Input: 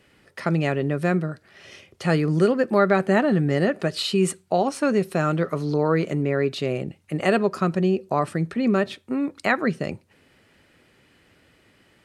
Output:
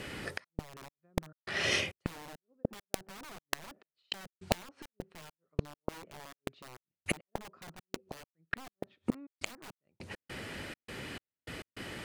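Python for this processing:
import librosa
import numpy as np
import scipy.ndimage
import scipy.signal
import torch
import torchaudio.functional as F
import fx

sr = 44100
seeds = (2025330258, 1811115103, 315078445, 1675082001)

y = fx.env_lowpass_down(x, sr, base_hz=760.0, full_db=-16.0)
y = fx.step_gate(y, sr, bpm=102, pattern='xxx.xx..x.', floor_db=-60.0, edge_ms=4.5)
y = (np.mod(10.0 ** (18.5 / 20.0) * y + 1.0, 2.0) - 1.0) / 10.0 ** (18.5 / 20.0)
y = fx.gate_flip(y, sr, shuts_db=-32.0, range_db=-40)
y = F.gain(torch.from_numpy(y), 15.5).numpy()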